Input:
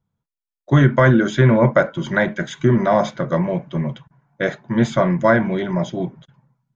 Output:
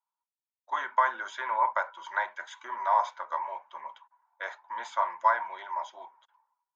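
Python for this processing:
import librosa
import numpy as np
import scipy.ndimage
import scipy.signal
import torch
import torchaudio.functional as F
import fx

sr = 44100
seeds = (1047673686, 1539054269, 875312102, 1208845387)

y = fx.ladder_highpass(x, sr, hz=890.0, resonance_pct=80)
y = y * 10.0 ** (-1.5 / 20.0)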